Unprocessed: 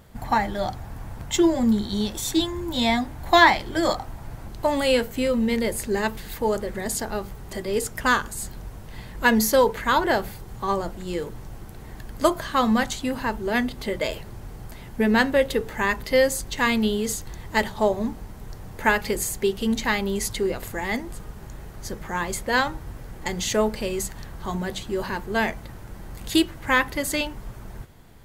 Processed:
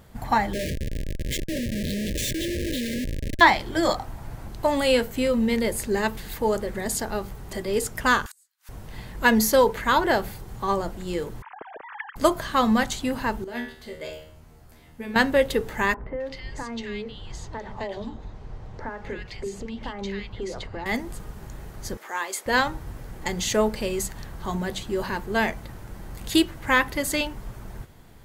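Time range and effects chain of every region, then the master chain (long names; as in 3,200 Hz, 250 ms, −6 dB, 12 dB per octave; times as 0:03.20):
0:00.53–0:03.41: compressor whose output falls as the input rises −26 dBFS + comparator with hysteresis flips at −28 dBFS + linear-phase brick-wall band-stop 640–1,600 Hz
0:08.26–0:08.69: high-pass filter 1,200 Hz 24 dB per octave + high-shelf EQ 2,600 Hz +8.5 dB + gate with flip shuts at −29 dBFS, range −36 dB
0:11.42–0:12.16: three sine waves on the formant tracks + high-frequency loss of the air 430 metres
0:13.44–0:15.16: tuned comb filter 78 Hz, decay 0.51 s, mix 90% + hum removal 55.61 Hz, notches 31
0:15.94–0:20.86: downward compressor 10 to 1, threshold −26 dBFS + high-frequency loss of the air 150 metres + three-band delay without the direct sound mids, lows, highs 30/260 ms, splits 240/1,700 Hz
0:21.97–0:22.46: high-pass filter 300 Hz 24 dB per octave + low-shelf EQ 440 Hz −10.5 dB
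whole clip: no processing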